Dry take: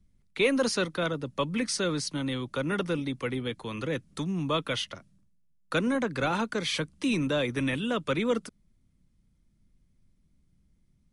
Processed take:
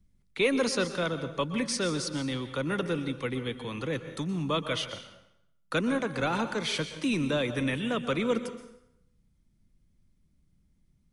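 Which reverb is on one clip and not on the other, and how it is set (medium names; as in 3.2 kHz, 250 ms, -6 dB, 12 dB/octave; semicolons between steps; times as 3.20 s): plate-style reverb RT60 0.79 s, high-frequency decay 0.85×, pre-delay 110 ms, DRR 10 dB; trim -1 dB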